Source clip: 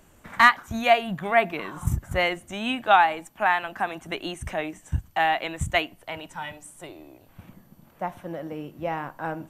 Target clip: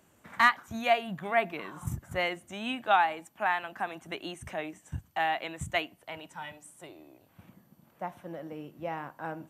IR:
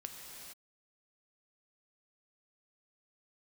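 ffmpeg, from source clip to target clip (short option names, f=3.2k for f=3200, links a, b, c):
-af "highpass=98,volume=-6.5dB"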